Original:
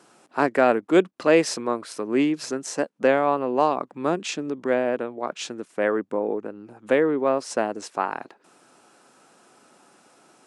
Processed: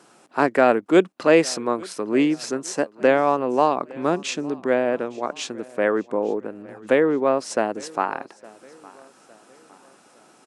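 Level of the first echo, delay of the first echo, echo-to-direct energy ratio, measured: -23.0 dB, 0.86 s, -22.0 dB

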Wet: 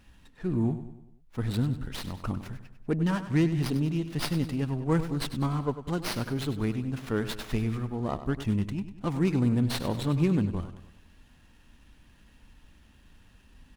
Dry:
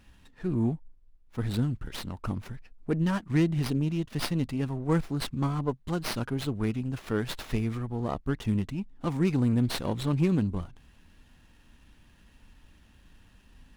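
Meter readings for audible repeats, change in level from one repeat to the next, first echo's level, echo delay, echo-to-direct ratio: 4, -6.5 dB, -12.0 dB, 98 ms, -11.0 dB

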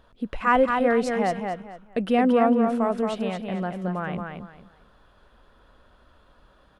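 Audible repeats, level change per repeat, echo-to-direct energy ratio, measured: 3, -12.0 dB, -4.5 dB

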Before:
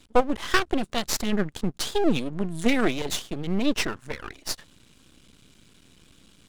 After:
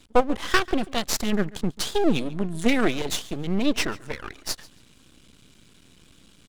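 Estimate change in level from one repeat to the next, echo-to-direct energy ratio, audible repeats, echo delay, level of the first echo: -14.0 dB, -21.0 dB, 2, 0.14 s, -21.0 dB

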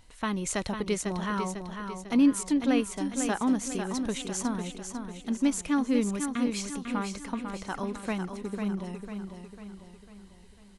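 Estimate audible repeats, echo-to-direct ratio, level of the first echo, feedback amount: 5, -6.0 dB, -7.0 dB, 48%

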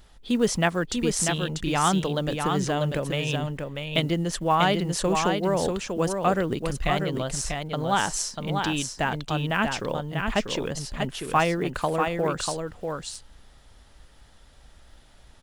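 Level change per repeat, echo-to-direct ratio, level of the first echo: no steady repeat, -5.0 dB, -5.0 dB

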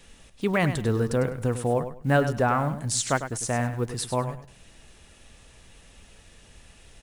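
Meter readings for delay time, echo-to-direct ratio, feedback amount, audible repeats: 0.101 s, -10.5 dB, 22%, 2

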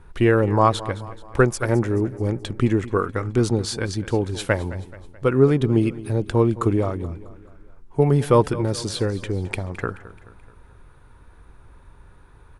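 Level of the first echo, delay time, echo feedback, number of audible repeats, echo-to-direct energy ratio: -17.0 dB, 0.215 s, 50%, 3, -16.0 dB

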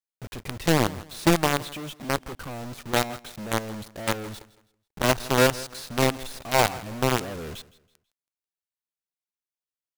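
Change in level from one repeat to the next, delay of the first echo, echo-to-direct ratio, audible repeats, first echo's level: -10.0 dB, 0.163 s, -19.0 dB, 2, -19.5 dB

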